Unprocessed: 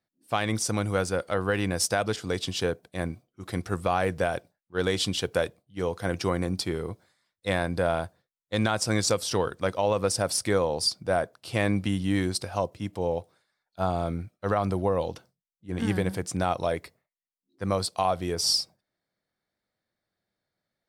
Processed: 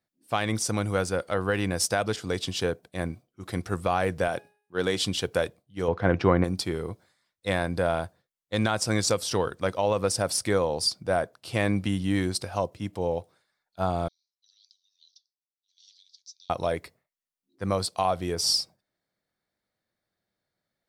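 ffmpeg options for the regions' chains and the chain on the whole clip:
-filter_complex "[0:a]asettb=1/sr,asplit=3[a][b][c];[a]atrim=end=4.284[d];[b]atrim=start=4.28:end=5.02,asetpts=PTS-STARTPTS,afade=t=in:d=0.004:c=qsin,afade=t=out:st=0.736:d=0.004:c=qsin,highpass=120,bandreject=f=415.6:t=h:w=4,bandreject=f=831.2:t=h:w=4,bandreject=f=1.2468k:t=h:w=4,bandreject=f=1.6624k:t=h:w=4,bandreject=f=2.078k:t=h:w=4,bandreject=f=2.4936k:t=h:w=4,bandreject=f=2.9092k:t=h:w=4,bandreject=f=3.3248k:t=h:w=4,bandreject=f=3.7404k:t=h:w=4,bandreject=f=4.156k:t=h:w=4,bandreject=f=4.5716k:t=h:w=4,bandreject=f=4.9872k:t=h:w=4,bandreject=f=5.4028k:t=h:w=4,bandreject=f=5.8184k:t=h:w=4,bandreject=f=6.234k:t=h:w=4,bandreject=f=6.6496k:t=h:w=4,bandreject=f=7.0652k:t=h:w=4,bandreject=f=7.4808k:t=h:w=4,bandreject=f=7.8964k:t=h:w=4,bandreject=f=8.312k:t=h:w=4,bandreject=f=8.7276k:t=h:w=4,bandreject=f=9.1432k:t=h:w=4,bandreject=f=9.5588k:t=h:w=4,bandreject=f=9.9744k:t=h:w=4,bandreject=f=10.39k:t=h:w=4,bandreject=f=10.8056k:t=h:w=4,bandreject=f=11.2212k:t=h:w=4,bandreject=f=11.6368k:t=h:w=4,bandreject=f=12.0524k:t=h:w=4,bandreject=f=12.468k:t=h:w=4,bandreject=f=12.8836k:t=h:w=4,bandreject=f=13.2992k:t=h:w=4,bandreject=f=13.7148k:t=h:w=4,bandreject=f=14.1304k:t=h:w=4,bandreject=f=14.546k:t=h:w=4[e];[c]atrim=start=5.016[f];[d][e]acrossfade=d=0.004:c1=hsin:c2=qsin[g];[g][f]acrossfade=d=0.004:c1=qsin:c2=hsin,asettb=1/sr,asplit=3[h][i][j];[h]atrim=end=5.884[k];[i]atrim=start=5.88:end=6.44,asetpts=PTS-STARTPTS,afade=t=in:d=0.004:c=qsin,afade=t=out:st=0.556:d=0.004:c=qsin,lowpass=2.2k,acontrast=59[l];[j]atrim=start=6.436[m];[k][l]acrossfade=d=0.004:c1=hsin:c2=qsin[n];[n][m]acrossfade=d=0.004:c1=qsin:c2=hsin,asettb=1/sr,asplit=3[o][p][q];[o]atrim=end=14.084[r];[p]atrim=start=14.08:end=16.5,asetpts=PTS-STARTPTS,afade=t=in:d=0.004:c=qsin,afade=t=out:st=2.416:d=0.004:c=qsin,asuperpass=centerf=4800:order=8:qfactor=1.9,flanger=delay=2.4:depth=2.7:regen=78:speed=1.3:shape=triangular[s];[q]atrim=start=16.496[t];[r][s]acrossfade=d=0.004:c1=hsin:c2=qsin[u];[u][t]acrossfade=d=0.004:c1=qsin:c2=hsin"

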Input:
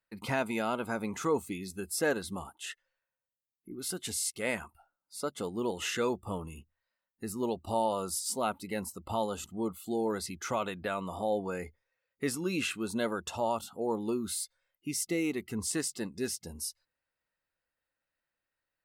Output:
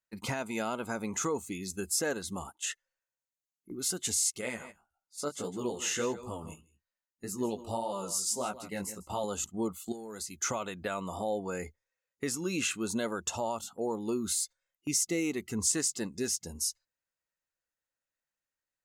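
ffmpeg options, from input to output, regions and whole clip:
-filter_complex "[0:a]asettb=1/sr,asplit=3[a][b][c];[a]atrim=end=4.414[d];[b]atrim=start=4.41:end=9.24,asetpts=PTS-STARTPTS,afade=t=in:d=0.004:c=qsin,afade=t=out:st=4.826:d=0.004:c=qsin,aecho=1:1:156:0.2,atrim=end_sample=213003,flanger=delay=15:depth=5.4:speed=1.7[e];[c]atrim=start=9.236[f];[d][e]acrossfade=d=0.004:c1=hsin:c2=qsin[g];[g][f]acrossfade=d=0.004:c1=qsin:c2=hsin,asettb=1/sr,asplit=3[h][i][j];[h]atrim=end=9.924[k];[i]atrim=start=9.92:end=10.43,asetpts=PTS-STARTPTS,afade=t=in:d=0.004:c=qsin,afade=t=out:st=0.506:d=0.004:c=qsin,highshelf=f=5.3k:g=10.5,acompressor=threshold=-40dB:ratio=16:attack=3.2:release=140:knee=1:detection=peak,asplit=2[l][m];[m]adelay=14,volume=-12dB[n];[l][n]amix=inputs=2:normalize=0,atrim=end_sample=22491[o];[j]atrim=start=10.426[p];[k][o]acrossfade=d=0.004:c1=hsin:c2=qsin[q];[q][p]acrossfade=d=0.004:c1=qsin:c2=hsin,agate=range=-9dB:threshold=-46dB:ratio=16:detection=peak,alimiter=level_in=1dB:limit=-24dB:level=0:latency=1:release=420,volume=-1dB,equalizer=f=6.7k:t=o:w=0.49:g=11,volume=2dB"

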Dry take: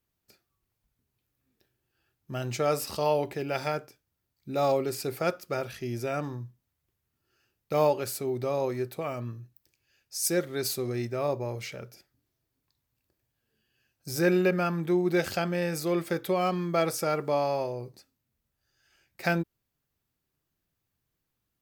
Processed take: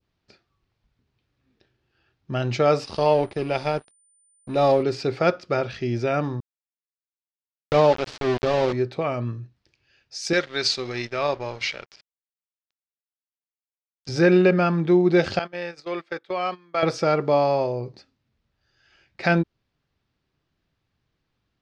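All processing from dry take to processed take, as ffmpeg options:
-filter_complex "[0:a]asettb=1/sr,asplit=3[a][b][c];[a]atrim=end=2.844[d];[b]atrim=start=2.84:end=4.83,asetpts=PTS-STARTPTS,afade=t=in:d=0.004:c=qsin,afade=t=out:st=1.986:d=0.004:c=qsin,equalizer=f=1.6k:w=1.7:g=-5.5,aeval=exprs='sgn(val(0))*max(abs(val(0))-0.00562,0)':c=same,aeval=exprs='val(0)+0.00708*sin(2*PI*9000*n/s)':c=same[e];[c]atrim=start=4.826[f];[d][e]acrossfade=d=0.004:c1=hsin:c2=qsin[g];[g][f]acrossfade=d=0.004:c1=qsin:c2=hsin,asettb=1/sr,asplit=3[h][i][j];[h]atrim=end=6.404[k];[i]atrim=start=6.4:end=8.73,asetpts=PTS-STARTPTS,afade=t=in:d=0.004:c=qsin,afade=t=out:st=2.326:d=0.004:c=qsin,lowshelf=f=64:g=4,aeval=exprs='val(0)*gte(abs(val(0)),0.0316)':c=same[l];[j]atrim=start=8.726[m];[k][l]acrossfade=d=0.004:c1=hsin:c2=qsin[n];[n][m]acrossfade=d=0.004:c1=qsin:c2=hsin,asettb=1/sr,asplit=3[o][p][q];[o]atrim=end=10.334[r];[p]atrim=start=10.33:end=14.09,asetpts=PTS-STARTPTS,afade=t=in:d=0.004:c=qsin,afade=t=out:st=3.756:d=0.004:c=qsin,lowpass=8.6k,tiltshelf=f=790:g=-9,aeval=exprs='sgn(val(0))*max(abs(val(0))-0.00422,0)':c=same[s];[q]atrim=start=14.086[t];[r][s]acrossfade=d=0.004:c1=hsin:c2=qsin[u];[u][t]acrossfade=d=0.004:c1=qsin:c2=hsin,asettb=1/sr,asplit=3[v][w][x];[v]atrim=end=15.394[y];[w]atrim=start=15.39:end=16.83,asetpts=PTS-STARTPTS,afade=t=in:d=0.004:c=qsin,afade=t=out:st=1.436:d=0.004:c=qsin,highpass=f=1.3k:p=1,highshelf=f=2.9k:g=-6,agate=range=-18dB:threshold=-41dB:ratio=16:release=100:detection=peak[z];[x]atrim=start=16.826[aa];[y][z]acrossfade=d=0.004:c1=hsin:c2=qsin[ab];[ab][aa]acrossfade=d=0.004:c1=qsin:c2=hsin,lowpass=f=4.9k:w=0.5412,lowpass=f=4.9k:w=1.3066,adynamicequalizer=threshold=0.00794:dfrequency=1800:dqfactor=0.72:tfrequency=1800:tqfactor=0.72:attack=5:release=100:ratio=0.375:range=2:mode=cutabove:tftype=bell,alimiter=level_in=14dB:limit=-1dB:release=50:level=0:latency=1,volume=-6dB"

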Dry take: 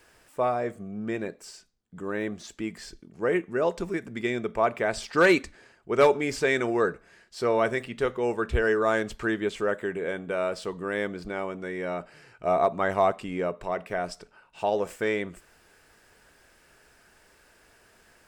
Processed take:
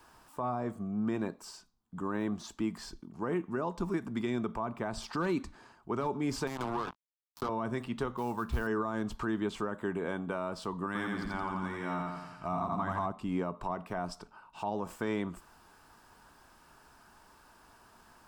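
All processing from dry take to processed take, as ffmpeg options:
-filter_complex "[0:a]asettb=1/sr,asplit=3[a][b][c];[a]atrim=end=6.474[d];[b]atrim=start=6.47:end=7.49,asetpts=PTS-STARTPTS,afade=t=in:d=0.004:c=qsin,afade=t=out:st=1.016:d=0.004:c=qsin,acompressor=threshold=-28dB:ratio=16:attack=3.2:release=140:knee=1:detection=peak,acrusher=bits=4:mix=0:aa=0.5[e];[c]atrim=start=7.486[f];[d][e]acrossfade=d=0.004:c1=hsin:c2=qsin[g];[g][f]acrossfade=d=0.004:c1=qsin:c2=hsin,asettb=1/sr,asplit=3[h][i][j];[h]atrim=end=8.174[k];[i]atrim=start=8.17:end=8.67,asetpts=PTS-STARTPTS,afade=t=in:d=0.004:c=qsin,afade=t=out:st=0.496:d=0.004:c=qsin,equalizer=f=400:w=1.7:g=-4.5,acrusher=bits=5:mode=log:mix=0:aa=0.000001[l];[j]atrim=start=8.666[m];[k][l]acrossfade=d=0.004:c1=hsin:c2=qsin[n];[n][m]acrossfade=d=0.004:c1=qsin:c2=hsin,asettb=1/sr,asplit=3[o][p][q];[o]atrim=end=10.864[r];[p]atrim=start=10.86:end=13.06,asetpts=PTS-STARTPTS,afade=t=in:d=0.004:c=qsin,afade=t=out:st=2.196:d=0.004:c=qsin,equalizer=f=500:w=1.2:g=-10.5,aecho=1:1:85|170|255|340|425|510|595|680:0.708|0.404|0.23|0.131|0.0747|0.0426|0.0243|0.0138,atrim=end_sample=97020[s];[q]atrim=start=13.056[t];[r][s]acrossfade=d=0.004:c1=hsin:c2=qsin[u];[u][t]acrossfade=d=0.004:c1=qsin:c2=hsin,equalizer=f=250:t=o:w=1:g=4,equalizer=f=500:t=o:w=1:g=-9,equalizer=f=1k:t=o:w=1:g=12,equalizer=f=2k:t=o:w=1:g=-10,equalizer=f=8k:t=o:w=1:g=-4,acrossover=split=310[v][w];[w]acompressor=threshold=-33dB:ratio=3[x];[v][x]amix=inputs=2:normalize=0,alimiter=limit=-23dB:level=0:latency=1:release=53"

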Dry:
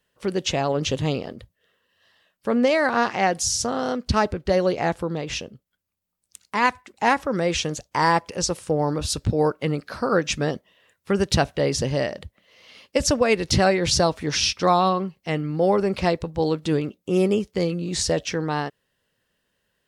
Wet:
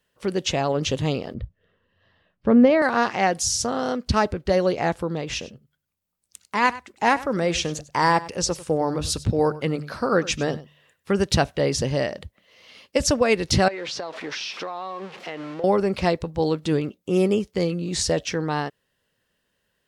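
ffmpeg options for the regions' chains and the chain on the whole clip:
-filter_complex "[0:a]asettb=1/sr,asplit=3[a][b][c];[a]atrim=end=1.344[d];[b]atrim=start=1.34:end=2.82,asetpts=PTS-STARTPTS,afade=t=in:d=0.004:c=qsin,afade=t=out:st=1.476:d=0.004:c=qsin,lowpass=4.8k,aemphasis=mode=reproduction:type=riaa[e];[c]atrim=start=2.816[f];[d][e]acrossfade=d=0.004:c1=hsin:c2=qsin[g];[g][f]acrossfade=d=0.004:c1=qsin:c2=hsin,asettb=1/sr,asplit=3[h][i][j];[h]atrim=end=5.294[k];[i]atrim=start=5.29:end=11.19,asetpts=PTS-STARTPTS,afade=t=in:d=0.004:c=qsin,afade=t=out:st=5.896:d=0.004:c=qsin,bandreject=f=74.01:t=h:w=4,bandreject=f=148.02:t=h:w=4,aecho=1:1:98:0.133,atrim=end_sample=260190[l];[j]atrim=start=11.186[m];[k][l]acrossfade=d=0.004:c1=hsin:c2=qsin[n];[n][m]acrossfade=d=0.004:c1=qsin:c2=hsin,asettb=1/sr,asplit=3[o][p][q];[o]atrim=end=13.684[r];[p]atrim=start=13.68:end=15.64,asetpts=PTS-STARTPTS,afade=t=in:d=0.004:c=qsin,afade=t=out:st=1.956:d=0.004:c=qsin,aeval=exprs='val(0)+0.5*0.0316*sgn(val(0))':c=same,highpass=410,lowpass=3.7k,acompressor=threshold=-27dB:ratio=12:attack=3.2:release=140:knee=1:detection=peak[s];[q]atrim=start=15.636[t];[r][s]acrossfade=d=0.004:c1=hsin:c2=qsin[u];[u][t]acrossfade=d=0.004:c1=qsin:c2=hsin"

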